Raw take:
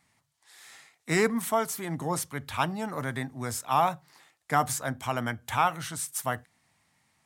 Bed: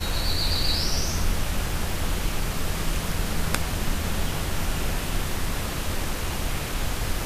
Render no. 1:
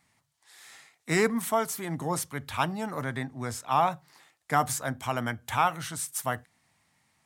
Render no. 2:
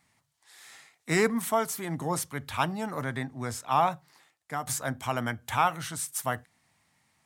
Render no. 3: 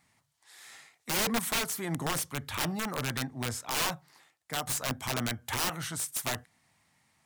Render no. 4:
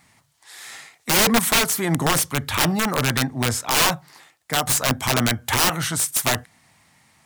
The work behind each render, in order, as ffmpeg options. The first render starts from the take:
-filter_complex "[0:a]asettb=1/sr,asplit=3[s0][s1][s2];[s0]atrim=end=3.034[s3];[s1]atrim=start=3.03:end=3.92,asetpts=PTS-STARTPTS,afade=t=in:d=0.004:c=qsin,afade=t=out:st=0.886:d=0.004:c=qsin,highshelf=f=9400:g=-11[s4];[s2]atrim=start=3.916[s5];[s3][s4]acrossfade=d=0.004:c1=hsin:c2=qsin[s6];[s6][s5]acrossfade=d=0.004:c1=qsin:c2=hsin"
-filter_complex "[0:a]asplit=2[s0][s1];[s0]atrim=end=4.67,asetpts=PTS-STARTPTS,afade=t=out:st=3.88:d=0.79:silence=0.266073[s2];[s1]atrim=start=4.67,asetpts=PTS-STARTPTS,afade=t=in:d=0.004:c=hsin:silence=0.266073[s3];[s2][s3]concat=n=2:v=0:a=1"
-af "aeval=exprs='(mod(15*val(0)+1,2)-1)/15':c=same"
-af "volume=3.98"

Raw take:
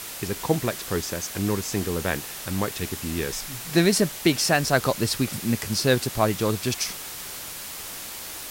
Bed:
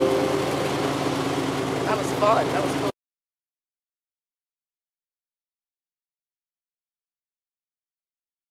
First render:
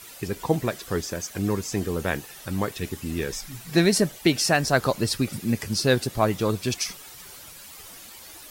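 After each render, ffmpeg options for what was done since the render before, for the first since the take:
-af "afftdn=nr=11:nf=-37"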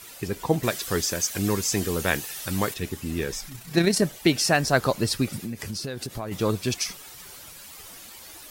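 -filter_complex "[0:a]asettb=1/sr,asplit=3[s0][s1][s2];[s0]atrim=end=0.634[s3];[s1]atrim=start=0.63:end=2.74,asetpts=PTS-STARTPTS,afade=t=in:d=0.004:c=qsin,afade=t=out:st=2.106:d=0.004:c=qsin,highshelf=f=2000:g=9[s4];[s2]atrim=start=2.736[s5];[s3][s4]acrossfade=d=0.004:c1=hsin:c2=qsin[s6];[s6][s5]acrossfade=d=0.004:c1=qsin:c2=hsin,asettb=1/sr,asplit=3[s7][s8][s9];[s7]atrim=end=3.494[s10];[s8]atrim=start=3.49:end=4.02,asetpts=PTS-STARTPTS,afade=t=in:d=0.004:c=qsin,afade=t=out:st=0.526:d=0.004:c=qsin,tremolo=f=31:d=0.4[s11];[s9]atrim=start=4.016[s12];[s10][s11]acrossfade=d=0.004:c1=hsin:c2=qsin[s13];[s13][s12]acrossfade=d=0.004:c1=qsin:c2=hsin,asplit=3[s14][s15][s16];[s14]afade=t=out:st=5.36:d=0.02[s17];[s15]acompressor=threshold=0.0398:ratio=10:attack=3.2:release=140:knee=1:detection=peak,afade=t=in:st=5.36:d=0.02,afade=t=out:st=6.31:d=0.02[s18];[s16]afade=t=in:st=6.31:d=0.02[s19];[s17][s18][s19]amix=inputs=3:normalize=0"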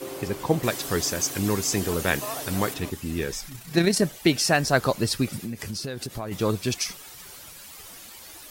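-filter_complex "[1:a]volume=0.168[s0];[0:a][s0]amix=inputs=2:normalize=0"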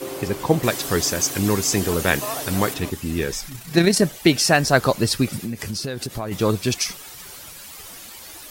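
-af "volume=1.68"

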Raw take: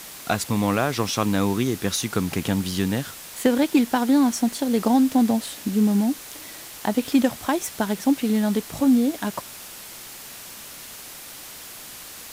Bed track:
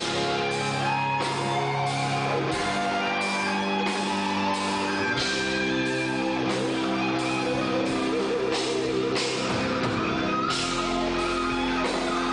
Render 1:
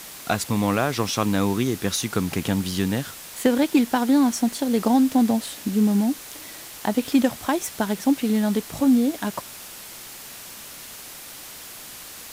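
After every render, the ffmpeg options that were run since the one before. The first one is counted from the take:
-af anull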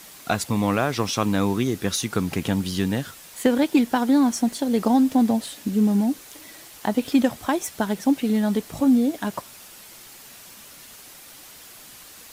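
-af "afftdn=nr=6:nf=-40"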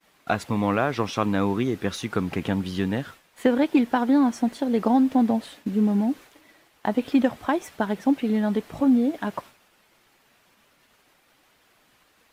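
-af "agate=range=0.0224:threshold=0.0158:ratio=3:detection=peak,bass=f=250:g=-3,treble=f=4000:g=-14"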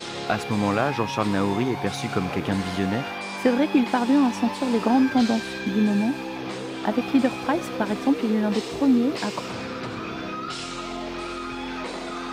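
-filter_complex "[1:a]volume=0.501[s0];[0:a][s0]amix=inputs=2:normalize=0"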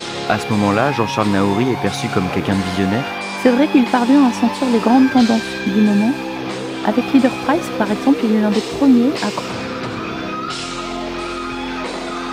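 -af "volume=2.37,alimiter=limit=0.891:level=0:latency=1"

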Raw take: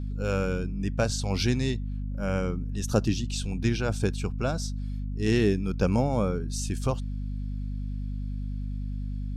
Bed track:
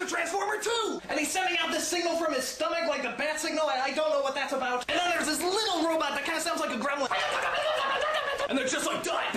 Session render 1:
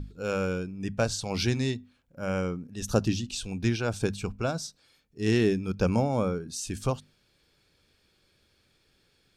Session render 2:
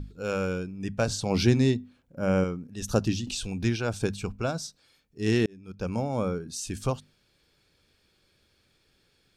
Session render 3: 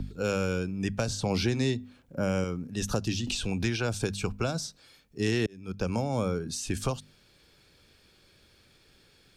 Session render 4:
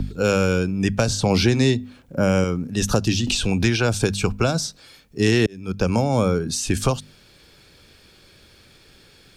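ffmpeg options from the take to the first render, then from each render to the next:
-af "bandreject=f=50:t=h:w=6,bandreject=f=100:t=h:w=6,bandreject=f=150:t=h:w=6,bandreject=f=200:t=h:w=6,bandreject=f=250:t=h:w=6"
-filter_complex "[0:a]asettb=1/sr,asplit=3[s0][s1][s2];[s0]atrim=end=1.074[s3];[s1]atrim=start=1.07:end=2.44,asetpts=PTS-STARTPTS,afade=t=in:d=0.004:c=qsin,afade=t=out:st=1.366:d=0.004:c=qsin,equalizer=f=260:w=0.35:g=7[s4];[s2]atrim=start=2.436[s5];[s3][s4]acrossfade=d=0.004:c1=hsin:c2=qsin[s6];[s6][s5]acrossfade=d=0.004:c1=qsin:c2=hsin,asettb=1/sr,asplit=3[s7][s8][s9];[s7]atrim=end=3.274[s10];[s8]atrim=start=3.27:end=3.69,asetpts=PTS-STARTPTS,afade=t=in:d=0.004:c=qsin,afade=t=out:st=0.416:d=0.004:c=qsin,acompressor=mode=upward:threshold=0.0447:ratio=2.5:attack=3.2:release=140:knee=2.83:detection=peak[s11];[s9]atrim=start=3.686[s12];[s10][s11]acrossfade=d=0.004:c1=hsin:c2=qsin[s13];[s13][s12]acrossfade=d=0.004:c1=qsin:c2=hsin,asplit=2[s14][s15];[s14]atrim=end=5.46,asetpts=PTS-STARTPTS,afade=t=out:st=5.456:d=0.004:c=hsin[s16];[s15]atrim=start=5.46,asetpts=PTS-STARTPTS,afade=t=in:d=0.87[s17];[s16][s17]concat=n=2:v=0:a=1"
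-filter_complex "[0:a]acrossover=split=97|410|3000[s0][s1][s2][s3];[s0]acompressor=threshold=0.00708:ratio=4[s4];[s1]acompressor=threshold=0.0141:ratio=4[s5];[s2]acompressor=threshold=0.0126:ratio=4[s6];[s3]acompressor=threshold=0.00794:ratio=4[s7];[s4][s5][s6][s7]amix=inputs=4:normalize=0,asplit=2[s8][s9];[s9]alimiter=limit=0.0631:level=0:latency=1:release=237,volume=1.12[s10];[s8][s10]amix=inputs=2:normalize=0"
-af "volume=2.99"

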